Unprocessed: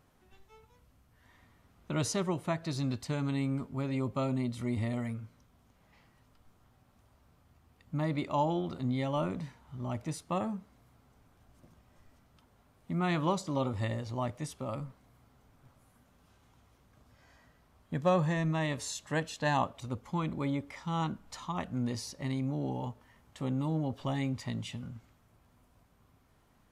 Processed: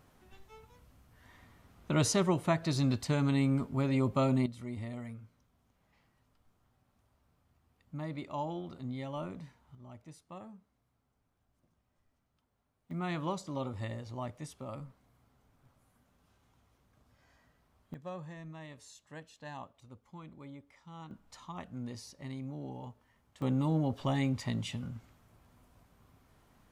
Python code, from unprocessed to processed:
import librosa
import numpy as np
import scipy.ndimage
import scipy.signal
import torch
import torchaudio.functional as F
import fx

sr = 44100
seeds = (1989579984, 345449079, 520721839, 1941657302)

y = fx.gain(x, sr, db=fx.steps((0.0, 3.5), (4.46, -7.5), (9.75, -15.0), (12.91, -5.5), (17.94, -16.0), (21.11, -8.0), (23.42, 2.0)))